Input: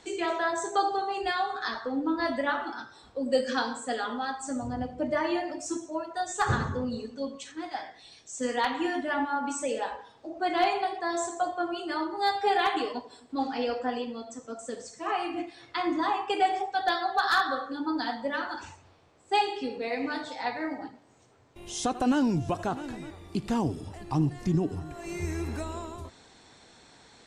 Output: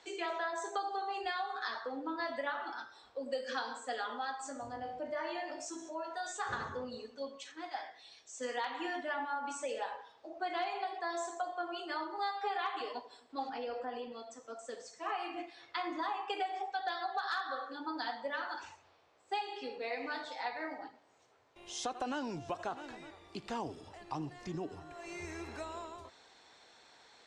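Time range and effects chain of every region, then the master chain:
4.39–6.53 resonator 54 Hz, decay 0.3 s, mix 80% + fast leveller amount 50%
12.18–12.81 BPF 270–7900 Hz + bell 1200 Hz +8.5 dB 0.39 oct
13.49–14.12 tilt -2 dB/oct + compressor 2.5:1, threshold -30 dBFS
whole clip: three-band isolator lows -14 dB, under 410 Hz, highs -17 dB, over 7200 Hz; compressor 6:1, threshold -29 dBFS; gain -4 dB

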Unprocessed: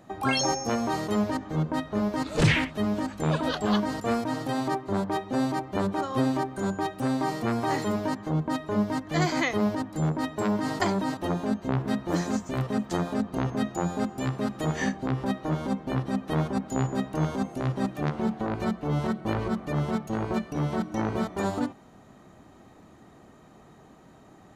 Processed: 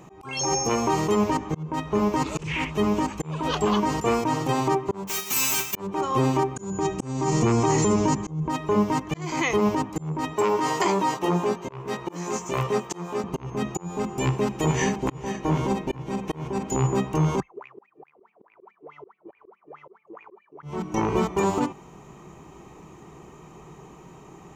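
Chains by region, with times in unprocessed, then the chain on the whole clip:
5.07–5.74 spectral whitening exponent 0.1 + comb 4.6 ms, depth 51% + overloaded stage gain 27.5 dB
6.56–8.48 synth low-pass 6900 Hz, resonance Q 3.8 + low shelf 320 Hz +10 dB
10.33–13.24 HPF 320 Hz 6 dB/oct + doubler 17 ms -5 dB
14.2–16.76 bell 150 Hz -5 dB 0.3 oct + notch 1200 Hz, Q 7.9 + echo 0.471 s -7 dB
17.4–20.63 wah 4.7 Hz 350–2500 Hz, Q 19 + core saturation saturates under 340 Hz
whole clip: ripple EQ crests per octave 0.74, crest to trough 10 dB; limiter -18 dBFS; auto swell 0.364 s; gain +5.5 dB

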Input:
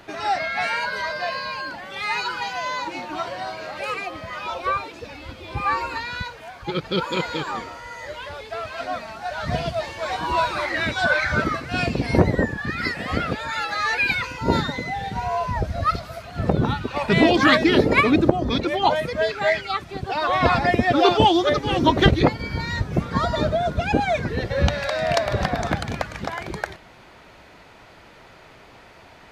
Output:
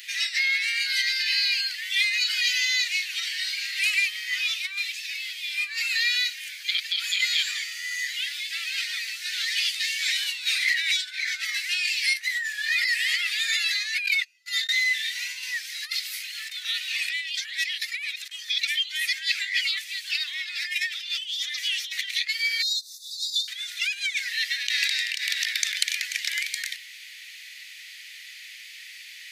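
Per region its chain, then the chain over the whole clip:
14.06–14.69 comb 5 ms, depth 88% + gate -21 dBFS, range -40 dB + compressor 3:1, threshold -25 dBFS
22.62–23.48 brick-wall FIR band-stop 250–3500 Hz + compressor 10:1, threshold -26 dBFS
whole clip: tilt +3 dB/oct; negative-ratio compressor -26 dBFS, ratio -1; Chebyshev high-pass 1900 Hz, order 5; gain +4 dB

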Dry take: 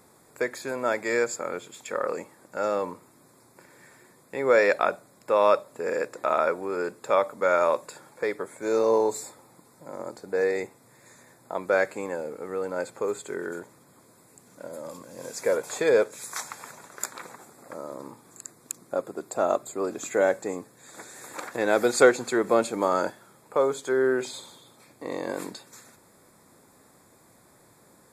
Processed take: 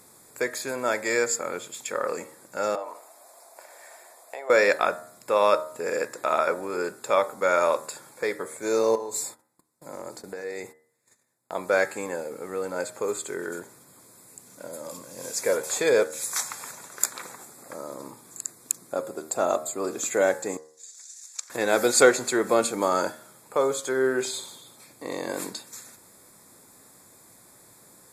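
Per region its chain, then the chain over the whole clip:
2.75–4.5 compressor 10:1, threshold -35 dBFS + resonant high-pass 670 Hz, resonance Q 6.5
8.95–11.52 gate -51 dBFS, range -24 dB + compressor, threshold -31 dBFS
20.57–21.5 band-pass 5900 Hz, Q 3.5 + transient shaper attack +11 dB, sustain -5 dB
whole clip: bell 12000 Hz +9 dB 2.6 oct; de-hum 77.71 Hz, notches 26

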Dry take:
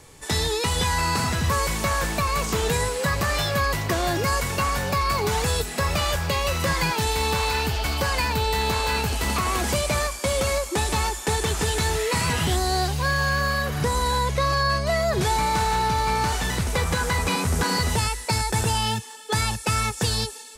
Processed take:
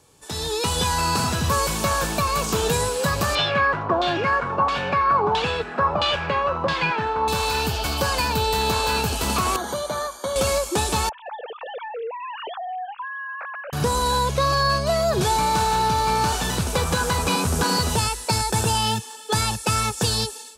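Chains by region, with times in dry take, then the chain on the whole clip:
3.35–7.28 HPF 160 Hz 6 dB/oct + LFO low-pass saw down 1.5 Hz 860–3600 Hz
9.56–10.36 running mean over 17 samples + tilt +4 dB/oct
11.09–13.73 sine-wave speech + high shelf 2200 Hz -10.5 dB + compressor, threshold -33 dBFS
whole clip: HPF 95 Hz 6 dB/oct; bell 2000 Hz -11 dB 0.29 oct; AGC gain up to 11.5 dB; gain -7 dB

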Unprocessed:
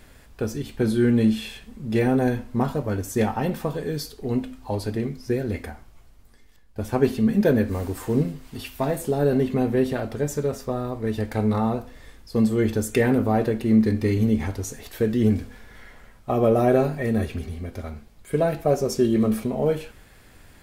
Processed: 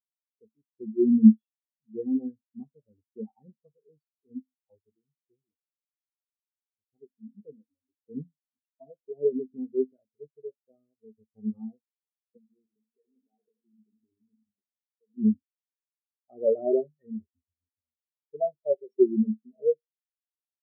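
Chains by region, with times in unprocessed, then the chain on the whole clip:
4.95–7.93 bell 1100 Hz -12.5 dB 0.8 oct + flange 1.9 Hz, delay 6 ms, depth 1.8 ms, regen +45%
12.37–15.18 low shelf 200 Hz -7 dB + compressor 10:1, threshold -27 dBFS + warbling echo 81 ms, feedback 52%, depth 99 cents, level -6 dB
whole clip: HPF 160 Hz 6 dB/oct; spectral expander 4:1; gain +2.5 dB

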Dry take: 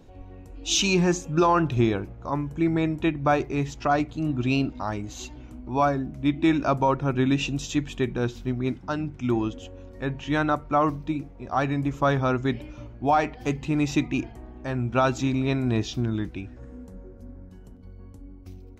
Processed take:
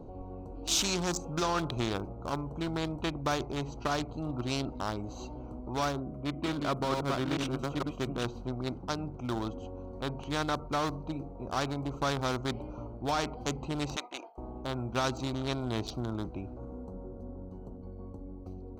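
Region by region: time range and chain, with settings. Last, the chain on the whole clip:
6–8.25 reverse delay 0.457 s, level -3 dB + band shelf 5200 Hz -13.5 dB 1.3 oct + notch comb 870 Hz
13.96–14.38 HPF 640 Hz 24 dB/oct + expander -46 dBFS
whole clip: Wiener smoothing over 25 samples; band shelf 2200 Hz -10.5 dB 1 oct; spectral compressor 2:1; gain -5.5 dB

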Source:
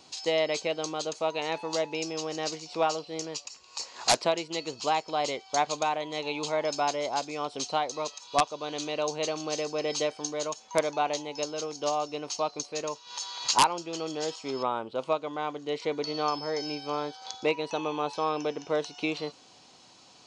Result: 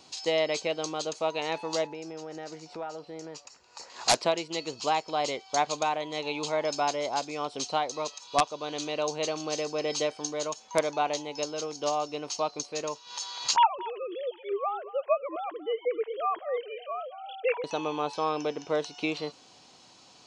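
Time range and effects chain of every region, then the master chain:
1.87–3.9 resonant high shelf 2200 Hz -7 dB, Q 1.5 + notch 1100 Hz, Q 11 + compressor 2.5:1, threshold -38 dBFS
13.56–17.64 sine-wave speech + echo 0.229 s -17 dB
whole clip: dry

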